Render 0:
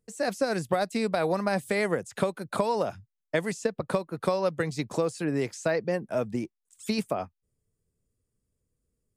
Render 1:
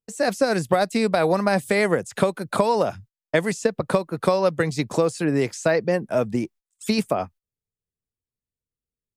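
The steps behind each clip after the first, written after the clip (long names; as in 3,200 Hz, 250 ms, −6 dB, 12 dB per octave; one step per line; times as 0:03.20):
noise gate −50 dBFS, range −22 dB
level +6.5 dB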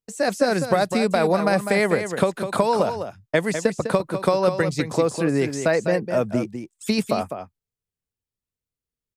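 single-tap delay 202 ms −8.5 dB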